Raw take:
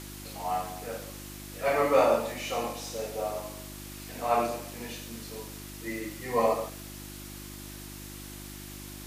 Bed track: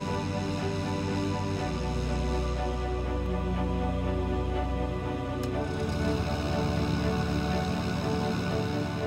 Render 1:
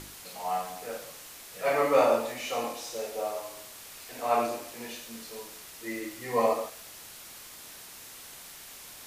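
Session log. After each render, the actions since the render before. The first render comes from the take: de-hum 50 Hz, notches 7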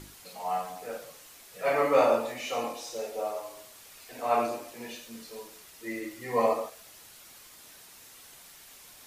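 denoiser 6 dB, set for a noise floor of -47 dBFS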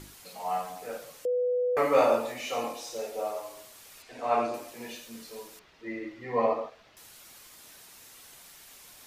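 1.25–1.77 bleep 495 Hz -24 dBFS; 4.02–4.54 air absorption 76 m; 5.59–6.97 air absorption 230 m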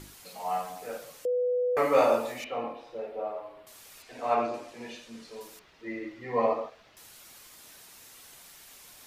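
2.44–3.67 air absorption 470 m; 4.34–5.41 air absorption 75 m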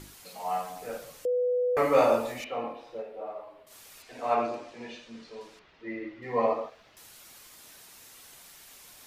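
0.76–2.42 low shelf 130 Hz +9.5 dB; 3.01–3.7 detuned doubles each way 30 cents -> 47 cents; 4.54–6.21 LPF 6300 Hz -> 3500 Hz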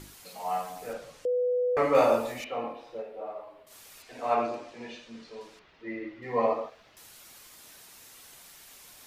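0.93–1.95 air absorption 57 m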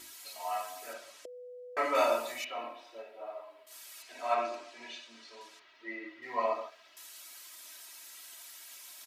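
HPF 1400 Hz 6 dB/oct; comb 3.1 ms, depth 77%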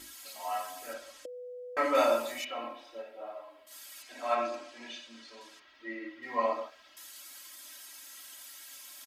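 low shelf 190 Hz +9.5 dB; comb 3.7 ms, depth 52%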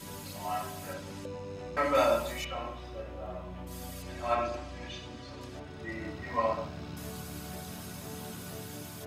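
add bed track -14 dB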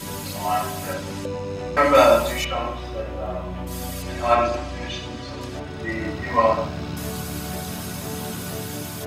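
gain +11.5 dB

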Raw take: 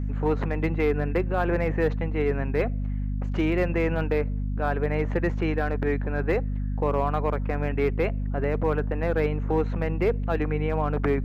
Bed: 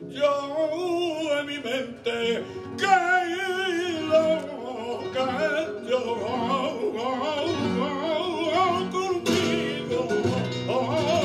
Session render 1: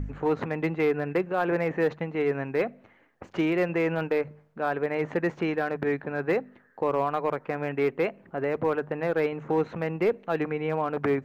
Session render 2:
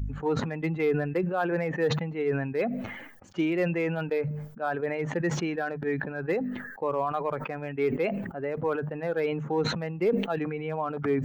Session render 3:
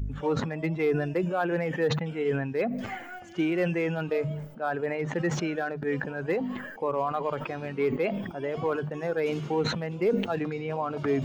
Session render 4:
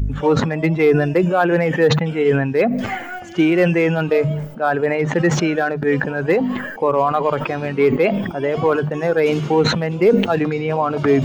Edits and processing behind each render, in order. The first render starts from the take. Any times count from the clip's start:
de-hum 50 Hz, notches 5
per-bin expansion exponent 1.5; sustainer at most 46 dB/s
add bed -21 dB
gain +11.5 dB

